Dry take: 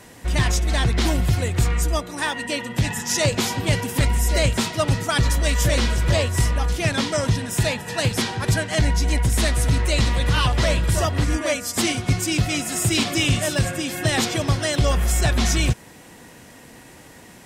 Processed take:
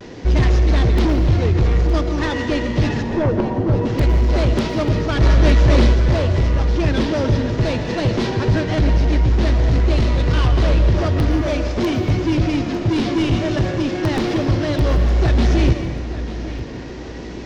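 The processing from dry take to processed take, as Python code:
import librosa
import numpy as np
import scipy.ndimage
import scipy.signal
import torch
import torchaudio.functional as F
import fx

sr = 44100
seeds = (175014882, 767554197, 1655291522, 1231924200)

y = fx.cvsd(x, sr, bps=32000)
y = fx.peak_eq(y, sr, hz=370.0, db=11.5, octaves=0.99)
y = (np.mod(10.0 ** (5.5 / 20.0) * y + 1.0, 2.0) - 1.0) / 10.0 ** (5.5 / 20.0)
y = fx.steep_lowpass(y, sr, hz=1000.0, slope=72, at=(3.03, 3.85))
y = 10.0 ** (-18.5 / 20.0) * np.tanh(y / 10.0 ** (-18.5 / 20.0))
y = fx.rev_plate(y, sr, seeds[0], rt60_s=1.7, hf_ratio=0.7, predelay_ms=100, drr_db=7.5)
y = fx.rider(y, sr, range_db=4, speed_s=2.0)
y = fx.low_shelf(y, sr, hz=200.0, db=8.0)
y = fx.echo_feedback(y, sr, ms=900, feedback_pct=36, wet_db=-14)
y = fx.vibrato(y, sr, rate_hz=0.53, depth_cents=35.0)
y = fx.env_flatten(y, sr, amount_pct=100, at=(5.2, 5.92), fade=0.02)
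y = y * 10.0 ** (1.0 / 20.0)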